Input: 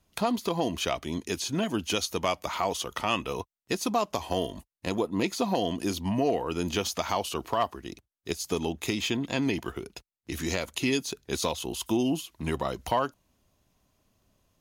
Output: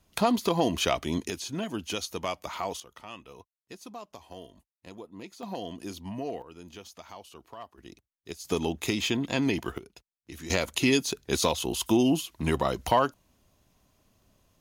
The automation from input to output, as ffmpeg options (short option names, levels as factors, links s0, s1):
-af "asetnsamples=n=441:p=0,asendcmd='1.3 volume volume -4.5dB;2.8 volume volume -16dB;5.43 volume volume -9dB;6.42 volume volume -17dB;7.78 volume volume -8dB;8.45 volume volume 1dB;9.78 volume volume -9dB;10.5 volume volume 3.5dB',volume=1.41"